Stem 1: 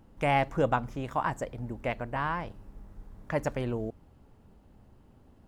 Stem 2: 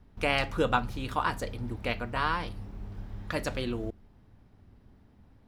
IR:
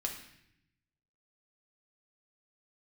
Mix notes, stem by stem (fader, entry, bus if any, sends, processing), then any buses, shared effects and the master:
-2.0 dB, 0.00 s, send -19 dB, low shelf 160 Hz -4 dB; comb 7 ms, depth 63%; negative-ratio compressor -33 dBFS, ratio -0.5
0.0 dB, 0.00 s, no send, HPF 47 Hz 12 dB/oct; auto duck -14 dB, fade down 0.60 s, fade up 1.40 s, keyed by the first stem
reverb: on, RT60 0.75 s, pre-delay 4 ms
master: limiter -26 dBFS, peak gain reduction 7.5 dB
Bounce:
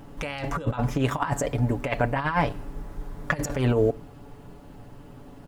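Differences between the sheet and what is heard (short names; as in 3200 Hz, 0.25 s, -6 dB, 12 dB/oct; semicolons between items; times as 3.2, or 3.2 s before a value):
stem 1 -2.0 dB -> +8.0 dB; master: missing limiter -26 dBFS, peak gain reduction 7.5 dB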